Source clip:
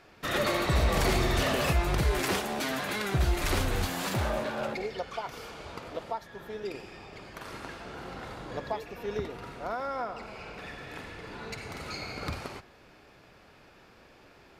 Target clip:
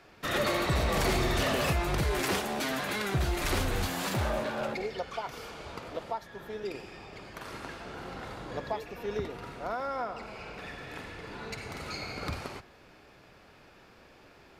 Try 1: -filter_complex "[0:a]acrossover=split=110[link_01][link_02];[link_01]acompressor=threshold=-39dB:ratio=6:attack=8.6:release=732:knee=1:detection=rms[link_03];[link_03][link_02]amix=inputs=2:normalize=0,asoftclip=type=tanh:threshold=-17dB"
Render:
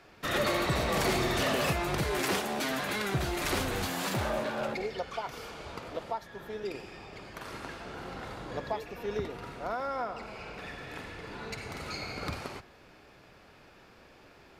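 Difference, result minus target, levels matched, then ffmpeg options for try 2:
downward compressor: peak gain reduction +10 dB
-filter_complex "[0:a]acrossover=split=110[link_01][link_02];[link_01]acompressor=threshold=-27dB:ratio=6:attack=8.6:release=732:knee=1:detection=rms[link_03];[link_03][link_02]amix=inputs=2:normalize=0,asoftclip=type=tanh:threshold=-17dB"

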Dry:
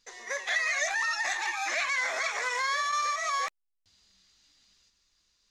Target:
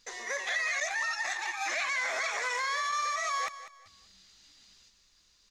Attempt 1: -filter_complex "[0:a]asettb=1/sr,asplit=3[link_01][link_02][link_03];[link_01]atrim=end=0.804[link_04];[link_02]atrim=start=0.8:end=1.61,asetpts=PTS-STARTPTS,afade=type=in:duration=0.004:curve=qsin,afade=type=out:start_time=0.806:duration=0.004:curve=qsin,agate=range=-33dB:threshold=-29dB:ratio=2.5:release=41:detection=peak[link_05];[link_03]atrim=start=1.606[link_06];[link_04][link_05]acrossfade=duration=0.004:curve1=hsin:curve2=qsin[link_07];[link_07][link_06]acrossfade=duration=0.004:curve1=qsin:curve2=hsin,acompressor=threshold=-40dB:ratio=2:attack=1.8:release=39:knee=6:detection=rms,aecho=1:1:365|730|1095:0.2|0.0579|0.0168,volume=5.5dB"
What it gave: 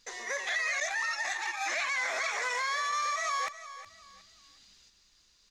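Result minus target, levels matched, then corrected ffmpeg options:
echo 169 ms late
-filter_complex "[0:a]asettb=1/sr,asplit=3[link_01][link_02][link_03];[link_01]atrim=end=0.804[link_04];[link_02]atrim=start=0.8:end=1.61,asetpts=PTS-STARTPTS,afade=type=in:duration=0.004:curve=qsin,afade=type=out:start_time=0.806:duration=0.004:curve=qsin,agate=range=-33dB:threshold=-29dB:ratio=2.5:release=41:detection=peak[link_05];[link_03]atrim=start=1.606[link_06];[link_04][link_05]acrossfade=duration=0.004:curve1=hsin:curve2=qsin[link_07];[link_07][link_06]acrossfade=duration=0.004:curve1=qsin:curve2=hsin,acompressor=threshold=-40dB:ratio=2:attack=1.8:release=39:knee=6:detection=rms,aecho=1:1:196|392|588:0.2|0.0579|0.0168,volume=5.5dB"

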